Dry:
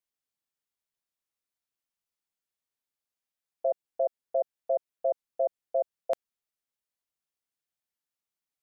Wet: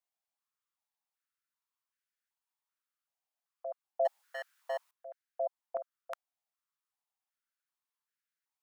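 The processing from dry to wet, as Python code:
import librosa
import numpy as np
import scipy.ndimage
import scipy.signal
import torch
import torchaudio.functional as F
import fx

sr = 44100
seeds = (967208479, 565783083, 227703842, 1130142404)

y = fx.power_curve(x, sr, exponent=0.7, at=(4.05, 4.91))
y = fx.filter_held_highpass(y, sr, hz=2.6, low_hz=730.0, high_hz=1600.0)
y = y * 10.0 ** (-5.0 / 20.0)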